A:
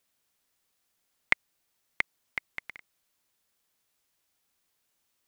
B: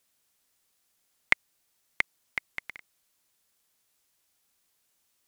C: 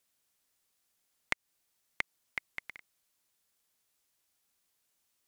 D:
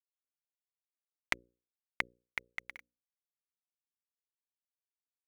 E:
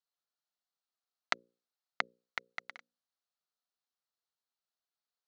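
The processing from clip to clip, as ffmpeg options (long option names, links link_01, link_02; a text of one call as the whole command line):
ffmpeg -i in.wav -af "equalizer=frequency=9600:width_type=o:width=2:gain=4,volume=1dB" out.wav
ffmpeg -i in.wav -af "acompressor=threshold=-23dB:ratio=6,volume=-4.5dB" out.wav
ffmpeg -i in.wav -af "acrusher=bits=9:mix=0:aa=0.000001,aphaser=in_gain=1:out_gain=1:delay=4.4:decay=0.27:speed=2:type=triangular,bandreject=frequency=60:width_type=h:width=6,bandreject=frequency=120:width_type=h:width=6,bandreject=frequency=180:width_type=h:width=6,bandreject=frequency=240:width_type=h:width=6,bandreject=frequency=300:width_type=h:width=6,bandreject=frequency=360:width_type=h:width=6,bandreject=frequency=420:width_type=h:width=6,bandreject=frequency=480:width_type=h:width=6,bandreject=frequency=540:width_type=h:width=6" out.wav
ffmpeg -i in.wav -af "highpass=frequency=180:width=0.5412,highpass=frequency=180:width=1.3066,equalizer=frequency=320:width_type=q:width=4:gain=-9,equalizer=frequency=720:width_type=q:width=4:gain=6,equalizer=frequency=1300:width_type=q:width=4:gain=7,equalizer=frequency=2300:width_type=q:width=4:gain=-8,equalizer=frequency=4200:width_type=q:width=4:gain=7,lowpass=frequency=6600:width=0.5412,lowpass=frequency=6600:width=1.3066,volume=1.5dB" out.wav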